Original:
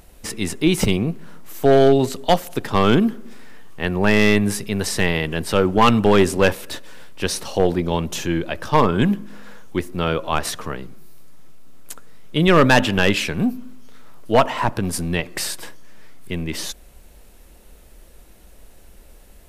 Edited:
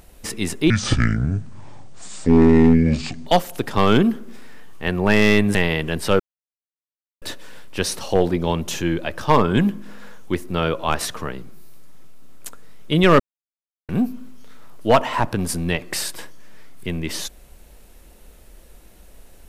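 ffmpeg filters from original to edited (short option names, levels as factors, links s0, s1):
-filter_complex "[0:a]asplit=8[s0][s1][s2][s3][s4][s5][s6][s7];[s0]atrim=end=0.704[s8];[s1]atrim=start=0.7:end=2.24,asetpts=PTS-STARTPTS,asetrate=26460,aresample=44100[s9];[s2]atrim=start=2.236:end=4.522[s10];[s3]atrim=start=4.988:end=5.64,asetpts=PTS-STARTPTS,afade=t=out:st=0.648:d=0.004:c=hsin[s11];[s4]atrim=start=5.64:end=6.66,asetpts=PTS-STARTPTS,volume=0[s12];[s5]atrim=start=6.66:end=12.64,asetpts=PTS-STARTPTS,afade=t=in:d=0.004:c=hsin,afade=t=out:st=5.976:d=0.004:c=hsin[s13];[s6]atrim=start=12.64:end=13.33,asetpts=PTS-STARTPTS,volume=0[s14];[s7]atrim=start=13.33,asetpts=PTS-STARTPTS,afade=t=in:d=0.004:c=hsin[s15];[s8][s9]acrossfade=d=0.004:c1=hsin:c2=hsin[s16];[s16][s10]acrossfade=d=0.004:c1=hsin:c2=hsin[s17];[s11][s12][s13][s14][s15]concat=n=5:v=0:a=1[s18];[s17][s18]acrossfade=d=0.004:c1=hsin:c2=hsin"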